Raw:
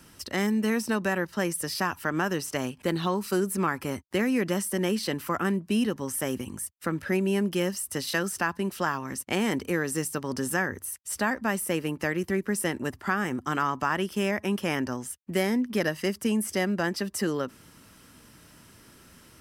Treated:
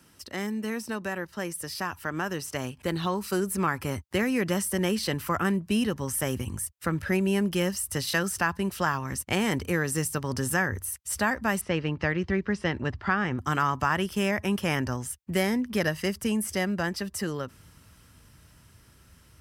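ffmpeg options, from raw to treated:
-filter_complex "[0:a]asettb=1/sr,asplit=3[a][b][c];[a]atrim=end=11.614[d];[b]atrim=start=11.61:end=13.39,asetpts=PTS-STARTPTS,afade=t=in:d=0.004:c=qsin,afade=t=out:st=1.776:d=0.004:c=qsin,lowpass=f=4.8k:w=0.5412,lowpass=f=4.8k:w=1.3066[e];[c]atrim=start=13.386[f];[d][e]acrossfade=d=0.004:c1=hsin:c2=qsin[g];[g][f]acrossfade=d=0.004:c1=qsin:c2=hsin,highpass=51,asubboost=boost=6:cutoff=100,dynaudnorm=f=330:g=17:m=7dB,volume=-5dB"

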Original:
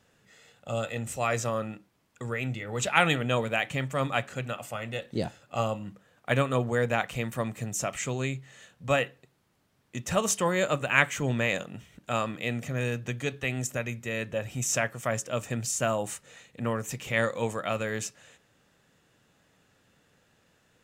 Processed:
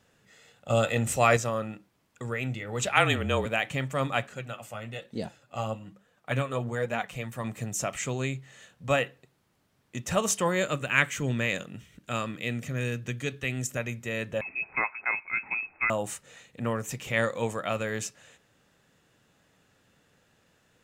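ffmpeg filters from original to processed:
-filter_complex "[0:a]asettb=1/sr,asplit=3[a][b][c];[a]atrim=end=0.704[d];[b]atrim=start=0.7:end=1.37,asetpts=PTS-STARTPTS,afade=t=in:d=0.004:c=qsin,afade=t=out:st=0.666:d=0.004:c=qsin,acontrast=74[e];[c]atrim=start=1.366[f];[d][e]acrossfade=d=0.004:c1=hsin:c2=qsin[g];[g][f]acrossfade=d=0.004:c1=qsin:c2=hsin,asettb=1/sr,asplit=3[h][i][j];[h]atrim=end=2.894[k];[i]atrim=start=2.89:end=3.46,asetpts=PTS-STARTPTS,afade=t=in:d=0.004:c=qsin,afade=t=out:st=0.566:d=0.004:c=qsin,afreqshift=-33[l];[j]atrim=start=3.456[m];[k][l]acrossfade=d=0.004:c1=hsin:c2=qsin[n];[n][m]acrossfade=d=0.004:c1=qsin:c2=hsin,asettb=1/sr,asplit=3[o][p][q];[o]atrim=end=4.274[r];[p]atrim=start=4.27:end=7.44,asetpts=PTS-STARTPTS,afade=t=in:d=0.004:c=qsin,afade=t=out:st=3.166:d=0.004:c=qsin,flanger=delay=3.9:depth=6.3:regen=41:speed=1.1:shape=triangular[s];[q]atrim=start=7.436[t];[r][s]acrossfade=d=0.004:c1=hsin:c2=qsin[u];[u][t]acrossfade=d=0.004:c1=qsin:c2=hsin,asettb=1/sr,asplit=3[v][w][x];[v]atrim=end=10.624[y];[w]atrim=start=10.62:end=13.77,asetpts=PTS-STARTPTS,afade=t=in:d=0.004:c=qsin,afade=t=out:st=3.146:d=0.004:c=qsin,equalizer=f=770:w=1.4:g=-7[z];[x]atrim=start=13.766[aa];[y][z]acrossfade=d=0.004:c1=hsin:c2=qsin[ab];[ab][aa]acrossfade=d=0.004:c1=qsin:c2=hsin,asettb=1/sr,asplit=3[ac][ad][ae];[ac]atrim=end=14.414[af];[ad]atrim=start=14.41:end=15.9,asetpts=PTS-STARTPTS,afade=t=in:d=0.004:c=qsin,afade=t=out:st=1.486:d=0.004:c=qsin,lowpass=f=2.3k:t=q:w=0.5098,lowpass=f=2.3k:t=q:w=0.6013,lowpass=f=2.3k:t=q:w=0.9,lowpass=f=2.3k:t=q:w=2.563,afreqshift=-2700[ag];[ae]atrim=start=15.896[ah];[af][ag]acrossfade=d=0.004:c1=hsin:c2=qsin[ai];[ai][ah]acrossfade=d=0.004:c1=qsin:c2=hsin"

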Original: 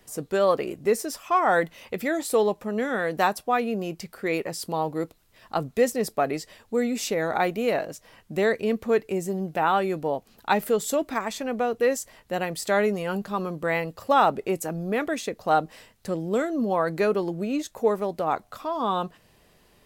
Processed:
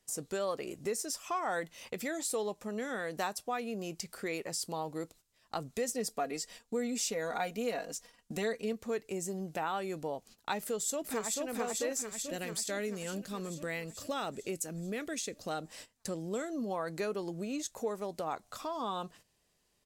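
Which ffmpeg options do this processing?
-filter_complex "[0:a]asettb=1/sr,asplit=3[a][b][c];[a]atrim=end=5.884[d];[b]atrim=start=5.88:end=8.73,asetpts=PTS-STARTPTS,afade=t=in:d=0.004:c=qsin,afade=t=out:st=2.846:d=0.004:c=qsin,aecho=1:1:4.2:0.65,atrim=end_sample=125685[e];[c]atrim=start=8.726[f];[d][e]acrossfade=d=0.004:c1=hsin:c2=qsin[g];[g][f]acrossfade=d=0.004:c1=qsin:c2=hsin,asplit=2[h][i];[i]afade=t=in:st=10.6:d=0.01,afade=t=out:st=11.48:d=0.01,aecho=0:1:440|880|1320|1760|2200|2640|3080|3520|3960|4400|4840:0.794328|0.516313|0.335604|0.218142|0.141793|0.0921652|0.0599074|0.0389398|0.0253109|0.0164521|0.0106938[j];[h][j]amix=inputs=2:normalize=0,asettb=1/sr,asplit=3[k][l][m];[k]atrim=end=12.014[n];[l]atrim=start=12.01:end=15.62,asetpts=PTS-STARTPTS,afade=t=in:d=0.004:c=qsin,afade=t=out:st=3.606:d=0.004:c=qsin,equalizer=f=920:w=1.3:g=-10[o];[m]atrim=start=15.616[p];[n][o]acrossfade=d=0.004:c1=hsin:c2=qsin[q];[q][p]acrossfade=d=0.004:c1=qsin:c2=hsin,agate=range=-15dB:threshold=-47dB:ratio=16:detection=peak,equalizer=f=7.1k:w=0.71:g=11.5,acompressor=threshold=-35dB:ratio=2,volume=-4dB"

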